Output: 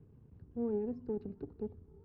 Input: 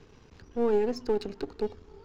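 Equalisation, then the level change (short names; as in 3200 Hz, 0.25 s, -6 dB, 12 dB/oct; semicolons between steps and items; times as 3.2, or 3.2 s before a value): band-pass 120 Hz, Q 1.2; air absorption 140 m; +1.5 dB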